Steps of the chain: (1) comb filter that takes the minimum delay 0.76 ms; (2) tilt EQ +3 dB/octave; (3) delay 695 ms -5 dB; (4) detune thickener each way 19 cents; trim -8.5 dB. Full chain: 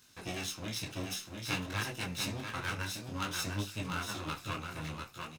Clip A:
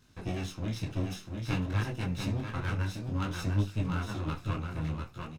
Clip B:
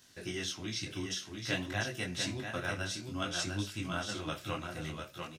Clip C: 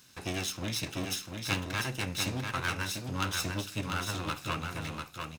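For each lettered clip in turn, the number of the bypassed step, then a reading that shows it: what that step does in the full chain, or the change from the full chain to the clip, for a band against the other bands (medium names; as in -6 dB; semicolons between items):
2, 125 Hz band +11.0 dB; 1, 500 Hz band +3.5 dB; 4, loudness change +3.5 LU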